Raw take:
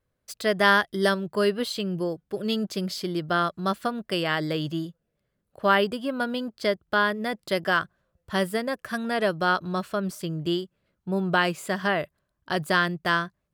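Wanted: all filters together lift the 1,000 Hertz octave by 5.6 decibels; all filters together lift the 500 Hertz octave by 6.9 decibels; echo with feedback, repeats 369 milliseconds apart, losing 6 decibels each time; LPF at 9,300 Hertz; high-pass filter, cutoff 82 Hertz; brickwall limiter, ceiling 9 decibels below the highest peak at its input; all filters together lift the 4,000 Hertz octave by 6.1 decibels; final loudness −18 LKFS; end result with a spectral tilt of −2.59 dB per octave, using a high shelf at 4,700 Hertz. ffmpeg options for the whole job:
ffmpeg -i in.wav -af "highpass=82,lowpass=9300,equalizer=frequency=500:width_type=o:gain=7.5,equalizer=frequency=1000:width_type=o:gain=4.5,equalizer=frequency=4000:width_type=o:gain=4.5,highshelf=frequency=4700:gain=7,alimiter=limit=-9dB:level=0:latency=1,aecho=1:1:369|738|1107|1476|1845|2214:0.501|0.251|0.125|0.0626|0.0313|0.0157,volume=4dB" out.wav

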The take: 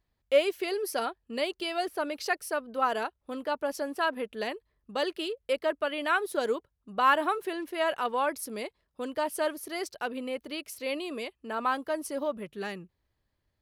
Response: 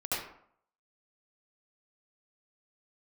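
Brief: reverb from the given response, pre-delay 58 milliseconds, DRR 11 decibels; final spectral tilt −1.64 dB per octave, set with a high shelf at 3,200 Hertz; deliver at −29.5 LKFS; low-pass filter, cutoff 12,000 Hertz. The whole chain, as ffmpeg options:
-filter_complex "[0:a]lowpass=12000,highshelf=frequency=3200:gain=6.5,asplit=2[link_01][link_02];[1:a]atrim=start_sample=2205,adelay=58[link_03];[link_02][link_03]afir=irnorm=-1:irlink=0,volume=-17.5dB[link_04];[link_01][link_04]amix=inputs=2:normalize=0,volume=0.5dB"

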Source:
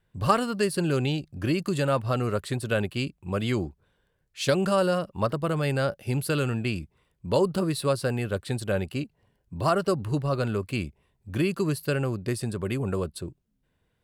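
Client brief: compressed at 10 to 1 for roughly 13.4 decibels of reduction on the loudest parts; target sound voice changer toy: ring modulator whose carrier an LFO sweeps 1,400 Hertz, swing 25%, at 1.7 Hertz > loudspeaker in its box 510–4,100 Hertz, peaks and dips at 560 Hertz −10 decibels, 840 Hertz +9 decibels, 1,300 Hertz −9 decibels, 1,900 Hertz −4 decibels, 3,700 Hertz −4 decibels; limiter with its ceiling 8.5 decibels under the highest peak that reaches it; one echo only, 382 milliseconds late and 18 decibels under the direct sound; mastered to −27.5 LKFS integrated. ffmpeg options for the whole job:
ffmpeg -i in.wav -af "acompressor=threshold=-29dB:ratio=10,alimiter=level_in=3.5dB:limit=-24dB:level=0:latency=1,volume=-3.5dB,aecho=1:1:382:0.126,aeval=exprs='val(0)*sin(2*PI*1400*n/s+1400*0.25/1.7*sin(2*PI*1.7*n/s))':channel_layout=same,highpass=510,equalizer=frequency=560:width_type=q:width=4:gain=-10,equalizer=frequency=840:width_type=q:width=4:gain=9,equalizer=frequency=1300:width_type=q:width=4:gain=-9,equalizer=frequency=1900:width_type=q:width=4:gain=-4,equalizer=frequency=3700:width_type=q:width=4:gain=-4,lowpass=frequency=4100:width=0.5412,lowpass=frequency=4100:width=1.3066,volume=13.5dB" out.wav

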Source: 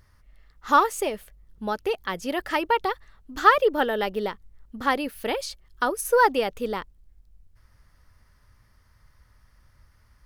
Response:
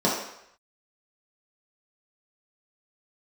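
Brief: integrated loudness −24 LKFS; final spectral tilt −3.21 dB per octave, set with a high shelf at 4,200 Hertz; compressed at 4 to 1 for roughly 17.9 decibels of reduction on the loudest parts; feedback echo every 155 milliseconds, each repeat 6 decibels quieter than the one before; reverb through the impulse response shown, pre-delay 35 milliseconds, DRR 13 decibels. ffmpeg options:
-filter_complex "[0:a]highshelf=frequency=4200:gain=9,acompressor=threshold=-32dB:ratio=4,aecho=1:1:155|310|465|620|775|930:0.501|0.251|0.125|0.0626|0.0313|0.0157,asplit=2[link_01][link_02];[1:a]atrim=start_sample=2205,adelay=35[link_03];[link_02][link_03]afir=irnorm=-1:irlink=0,volume=-28.5dB[link_04];[link_01][link_04]amix=inputs=2:normalize=0,volume=9.5dB"

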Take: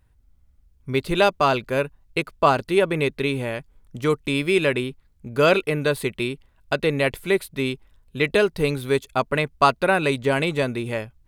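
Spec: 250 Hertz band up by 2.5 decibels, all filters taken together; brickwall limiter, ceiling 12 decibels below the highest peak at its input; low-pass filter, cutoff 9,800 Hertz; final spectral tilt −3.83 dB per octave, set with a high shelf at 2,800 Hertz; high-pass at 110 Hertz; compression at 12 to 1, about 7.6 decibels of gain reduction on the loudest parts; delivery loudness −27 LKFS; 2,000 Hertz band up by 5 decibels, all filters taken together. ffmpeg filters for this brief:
ffmpeg -i in.wav -af "highpass=110,lowpass=9800,equalizer=frequency=250:width_type=o:gain=3.5,equalizer=frequency=2000:width_type=o:gain=4.5,highshelf=frequency=2800:gain=4.5,acompressor=threshold=-17dB:ratio=12,volume=1dB,alimiter=limit=-15dB:level=0:latency=1" out.wav

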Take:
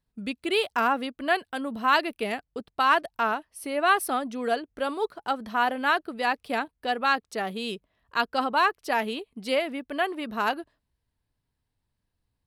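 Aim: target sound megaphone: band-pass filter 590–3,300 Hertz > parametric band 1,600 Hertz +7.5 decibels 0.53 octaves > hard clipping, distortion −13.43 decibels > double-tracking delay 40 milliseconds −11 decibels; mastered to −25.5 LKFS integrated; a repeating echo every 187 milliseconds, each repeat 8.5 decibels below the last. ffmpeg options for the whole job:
ffmpeg -i in.wav -filter_complex "[0:a]highpass=590,lowpass=3300,equalizer=frequency=1600:width_type=o:width=0.53:gain=7.5,aecho=1:1:187|374|561|748:0.376|0.143|0.0543|0.0206,asoftclip=type=hard:threshold=-15dB,asplit=2[link_01][link_02];[link_02]adelay=40,volume=-11dB[link_03];[link_01][link_03]amix=inputs=2:normalize=0,volume=-0.5dB" out.wav

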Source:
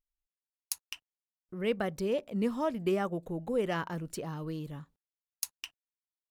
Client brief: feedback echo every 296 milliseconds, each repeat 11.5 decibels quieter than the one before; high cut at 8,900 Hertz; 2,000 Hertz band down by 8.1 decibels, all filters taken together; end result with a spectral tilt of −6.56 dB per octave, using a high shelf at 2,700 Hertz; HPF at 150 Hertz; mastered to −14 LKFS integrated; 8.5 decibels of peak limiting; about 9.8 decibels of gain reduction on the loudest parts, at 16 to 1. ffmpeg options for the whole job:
ffmpeg -i in.wav -af "highpass=150,lowpass=8900,equalizer=frequency=2000:width_type=o:gain=-7,highshelf=frequency=2700:gain=-9,acompressor=threshold=-35dB:ratio=16,alimiter=level_in=9dB:limit=-24dB:level=0:latency=1,volume=-9dB,aecho=1:1:296|592|888:0.266|0.0718|0.0194,volume=28dB" out.wav

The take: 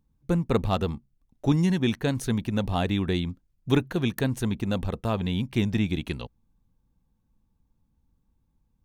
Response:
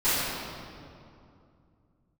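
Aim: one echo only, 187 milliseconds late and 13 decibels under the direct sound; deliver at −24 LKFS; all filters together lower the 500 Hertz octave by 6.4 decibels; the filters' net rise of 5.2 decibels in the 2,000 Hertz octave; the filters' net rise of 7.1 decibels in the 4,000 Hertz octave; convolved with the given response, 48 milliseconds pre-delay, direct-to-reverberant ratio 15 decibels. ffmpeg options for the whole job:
-filter_complex "[0:a]equalizer=frequency=500:width_type=o:gain=-9,equalizer=frequency=2000:width_type=o:gain=5,equalizer=frequency=4000:width_type=o:gain=7,aecho=1:1:187:0.224,asplit=2[link_01][link_02];[1:a]atrim=start_sample=2205,adelay=48[link_03];[link_02][link_03]afir=irnorm=-1:irlink=0,volume=-30.5dB[link_04];[link_01][link_04]amix=inputs=2:normalize=0,volume=3dB"

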